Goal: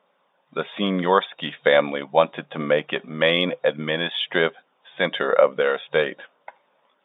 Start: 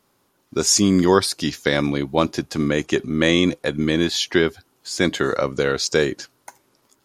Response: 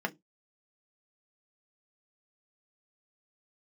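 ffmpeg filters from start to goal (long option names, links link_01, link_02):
-af "afftfilt=real='re*between(b*sr/4096,150,3700)':imag='im*between(b*sr/4096,150,3700)':win_size=4096:overlap=0.75,aphaser=in_gain=1:out_gain=1:delay=1.2:decay=0.25:speed=1.1:type=sinusoidal,lowshelf=frequency=430:width_type=q:width=3:gain=-7"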